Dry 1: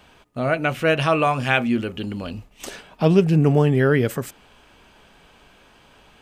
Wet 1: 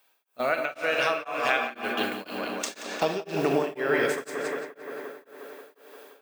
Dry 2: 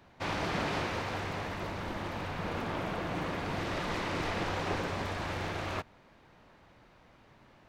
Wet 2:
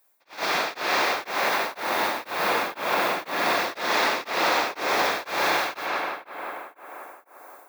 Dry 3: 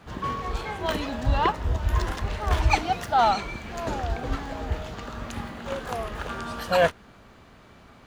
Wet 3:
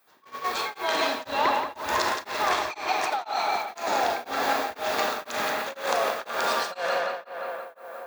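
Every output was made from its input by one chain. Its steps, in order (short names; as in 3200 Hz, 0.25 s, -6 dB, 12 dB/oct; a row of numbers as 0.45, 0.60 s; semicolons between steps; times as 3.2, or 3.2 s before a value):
BPF 470–5700 Hz; added noise violet -62 dBFS; AGC gain up to 11 dB; high shelf 3900 Hz +11.5 dB; Schroeder reverb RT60 0.76 s, combs from 29 ms, DRR 4.5 dB; compressor 4:1, threshold -23 dBFS; gate -28 dBFS, range -17 dB; notch 3000 Hz, Q 9.4; tape echo 0.176 s, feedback 83%, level -4.5 dB, low-pass 3500 Hz; beating tremolo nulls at 2 Hz; normalise peaks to -9 dBFS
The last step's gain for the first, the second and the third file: -0.5, +3.0, +0.5 dB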